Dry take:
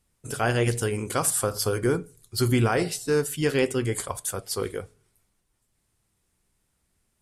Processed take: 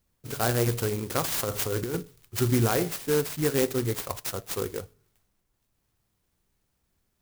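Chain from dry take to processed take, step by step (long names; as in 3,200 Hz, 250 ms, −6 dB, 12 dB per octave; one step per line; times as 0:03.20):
0:01.24–0:01.94: compressor whose output falls as the input rises −27 dBFS, ratio −1
converter with an unsteady clock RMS 0.094 ms
level −1.5 dB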